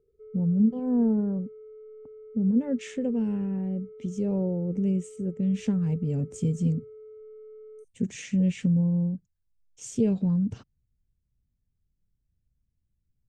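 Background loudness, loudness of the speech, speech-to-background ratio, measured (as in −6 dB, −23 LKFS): −47.0 LKFS, −27.5 LKFS, 19.5 dB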